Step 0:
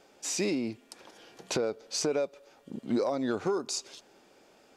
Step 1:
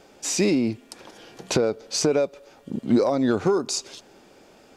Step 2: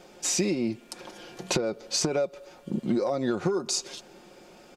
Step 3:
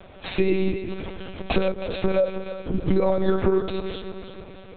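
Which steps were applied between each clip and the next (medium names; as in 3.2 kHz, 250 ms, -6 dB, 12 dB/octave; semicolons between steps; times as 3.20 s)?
bass shelf 210 Hz +8 dB; trim +6.5 dB
comb 5.6 ms, depth 50%; compression 6:1, threshold -23 dBFS, peak gain reduction 9 dB
backward echo that repeats 159 ms, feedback 69%, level -9 dB; monotone LPC vocoder at 8 kHz 190 Hz; trim +6 dB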